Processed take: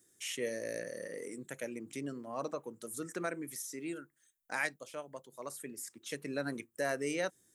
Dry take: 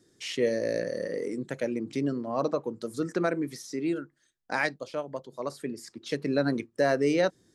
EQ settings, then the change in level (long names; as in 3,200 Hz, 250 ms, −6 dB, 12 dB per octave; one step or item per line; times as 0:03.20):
first-order pre-emphasis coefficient 0.9
parametric band 4,600 Hz −14.5 dB 0.78 octaves
+7.5 dB